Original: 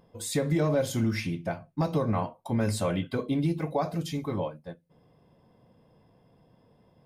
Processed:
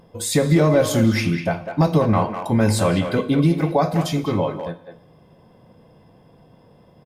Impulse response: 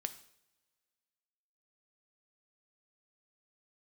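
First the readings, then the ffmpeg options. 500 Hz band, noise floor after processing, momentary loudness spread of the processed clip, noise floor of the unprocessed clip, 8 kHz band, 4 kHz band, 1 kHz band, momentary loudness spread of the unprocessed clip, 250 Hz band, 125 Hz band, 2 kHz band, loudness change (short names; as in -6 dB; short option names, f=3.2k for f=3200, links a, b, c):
+10.0 dB, -52 dBFS, 8 LU, -63 dBFS, +10.0 dB, +10.0 dB, +10.5 dB, 8 LU, +10.0 dB, +10.0 dB, +10.5 dB, +10.0 dB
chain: -filter_complex "[0:a]asplit=2[a][b];[b]adelay=200,highpass=300,lowpass=3.4k,asoftclip=type=hard:threshold=-25.5dB,volume=-7dB[c];[a][c]amix=inputs=2:normalize=0,asplit=2[d][e];[1:a]atrim=start_sample=2205,afade=t=out:st=0.44:d=0.01,atrim=end_sample=19845,asetrate=32193,aresample=44100[f];[e][f]afir=irnorm=-1:irlink=0,volume=2dB[g];[d][g]amix=inputs=2:normalize=0,volume=2.5dB"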